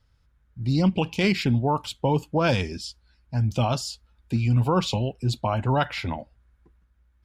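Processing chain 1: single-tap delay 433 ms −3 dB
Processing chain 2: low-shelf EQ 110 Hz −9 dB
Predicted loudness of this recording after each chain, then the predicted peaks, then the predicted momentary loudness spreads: −24.0, −26.5 LKFS; −8.5, −11.0 dBFS; 7, 11 LU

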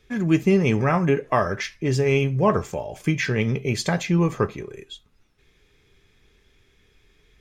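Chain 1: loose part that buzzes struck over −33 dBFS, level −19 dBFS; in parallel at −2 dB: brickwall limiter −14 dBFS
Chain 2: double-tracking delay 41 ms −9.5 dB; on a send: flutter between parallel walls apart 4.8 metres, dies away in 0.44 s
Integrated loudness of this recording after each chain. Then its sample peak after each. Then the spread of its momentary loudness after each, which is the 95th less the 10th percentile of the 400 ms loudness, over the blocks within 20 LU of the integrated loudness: −18.0, −19.5 LKFS; −4.5, −4.5 dBFS; 11, 10 LU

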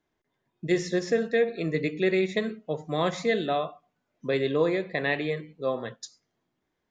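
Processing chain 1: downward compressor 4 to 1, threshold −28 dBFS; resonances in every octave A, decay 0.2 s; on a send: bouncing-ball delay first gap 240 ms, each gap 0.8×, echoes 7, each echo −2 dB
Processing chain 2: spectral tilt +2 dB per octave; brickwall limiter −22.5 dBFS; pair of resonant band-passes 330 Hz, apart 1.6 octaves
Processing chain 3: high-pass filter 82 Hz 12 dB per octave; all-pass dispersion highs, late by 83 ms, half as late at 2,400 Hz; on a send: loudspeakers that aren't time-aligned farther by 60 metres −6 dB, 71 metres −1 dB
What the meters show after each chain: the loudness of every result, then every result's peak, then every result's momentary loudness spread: −41.0, −43.5, −25.0 LKFS; −25.0, −27.5, −11.0 dBFS; 14, 9, 9 LU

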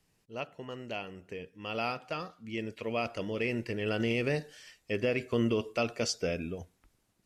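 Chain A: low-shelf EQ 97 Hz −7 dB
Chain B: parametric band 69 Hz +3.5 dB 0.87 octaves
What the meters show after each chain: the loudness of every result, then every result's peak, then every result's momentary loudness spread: −34.5, −34.0 LKFS; −17.0, −17.0 dBFS; 13, 14 LU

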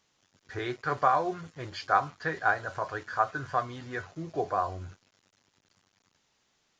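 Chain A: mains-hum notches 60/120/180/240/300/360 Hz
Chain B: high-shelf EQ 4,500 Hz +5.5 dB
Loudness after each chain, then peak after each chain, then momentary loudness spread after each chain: −31.0, −30.5 LKFS; −9.5, −9.5 dBFS; 14, 12 LU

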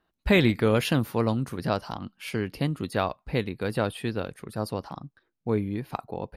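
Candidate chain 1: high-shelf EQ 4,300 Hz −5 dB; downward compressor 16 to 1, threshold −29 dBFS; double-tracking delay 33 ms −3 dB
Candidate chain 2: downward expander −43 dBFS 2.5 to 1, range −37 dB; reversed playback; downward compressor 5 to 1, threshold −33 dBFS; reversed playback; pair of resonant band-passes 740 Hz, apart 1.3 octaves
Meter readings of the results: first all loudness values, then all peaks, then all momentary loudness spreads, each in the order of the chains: −35.0, −47.5 LKFS; −15.0, −30.0 dBFS; 4, 8 LU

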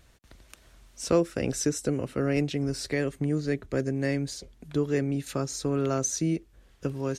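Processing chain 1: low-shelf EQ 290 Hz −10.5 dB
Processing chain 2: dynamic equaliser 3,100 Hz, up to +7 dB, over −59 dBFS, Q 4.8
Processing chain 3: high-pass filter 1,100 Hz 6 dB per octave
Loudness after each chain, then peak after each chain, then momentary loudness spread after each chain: −32.5, −29.0, −35.5 LKFS; −14.0, −10.0, −18.0 dBFS; 9, 7, 14 LU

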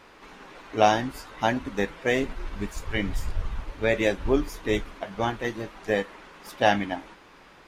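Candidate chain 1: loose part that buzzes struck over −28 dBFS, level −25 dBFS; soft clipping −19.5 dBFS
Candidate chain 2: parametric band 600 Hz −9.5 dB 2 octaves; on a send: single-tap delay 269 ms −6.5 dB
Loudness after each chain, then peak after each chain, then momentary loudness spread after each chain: −30.5, −31.5 LKFS; −19.5, −10.5 dBFS; 17, 12 LU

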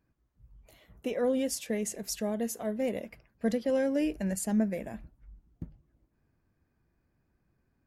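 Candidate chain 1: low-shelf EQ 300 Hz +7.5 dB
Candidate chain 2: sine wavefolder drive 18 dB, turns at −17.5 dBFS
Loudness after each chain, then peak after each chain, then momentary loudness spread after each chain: −28.5, −21.5 LKFS; −13.0, −15.0 dBFS; 17, 17 LU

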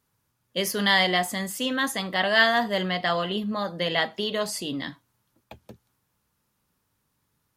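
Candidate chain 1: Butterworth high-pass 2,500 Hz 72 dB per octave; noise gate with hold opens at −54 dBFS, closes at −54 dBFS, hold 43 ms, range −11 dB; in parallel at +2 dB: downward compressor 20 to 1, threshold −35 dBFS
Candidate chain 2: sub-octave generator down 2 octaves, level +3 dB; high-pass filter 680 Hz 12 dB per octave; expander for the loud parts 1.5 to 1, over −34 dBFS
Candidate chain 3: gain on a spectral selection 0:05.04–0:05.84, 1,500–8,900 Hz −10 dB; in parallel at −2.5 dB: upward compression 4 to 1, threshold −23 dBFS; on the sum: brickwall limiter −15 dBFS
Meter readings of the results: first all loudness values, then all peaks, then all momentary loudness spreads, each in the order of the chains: −27.0, −28.0, −24.5 LKFS; −11.0, −7.5, −15.0 dBFS; 9, 18, 17 LU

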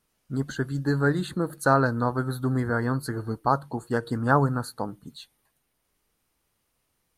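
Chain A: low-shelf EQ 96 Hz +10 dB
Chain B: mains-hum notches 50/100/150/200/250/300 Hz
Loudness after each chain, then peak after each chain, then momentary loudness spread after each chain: −25.0, −26.5 LKFS; −5.5, −5.0 dBFS; 11, 12 LU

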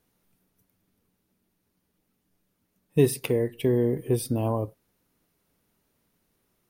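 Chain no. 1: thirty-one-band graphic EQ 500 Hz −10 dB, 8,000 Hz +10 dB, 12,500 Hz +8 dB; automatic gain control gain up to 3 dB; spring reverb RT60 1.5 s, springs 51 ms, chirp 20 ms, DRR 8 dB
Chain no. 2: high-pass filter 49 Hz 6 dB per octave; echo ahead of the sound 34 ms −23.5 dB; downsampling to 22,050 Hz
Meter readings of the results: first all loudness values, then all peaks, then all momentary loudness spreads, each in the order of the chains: −23.5, −26.0 LKFS; −6.0, −8.0 dBFS; 8, 6 LU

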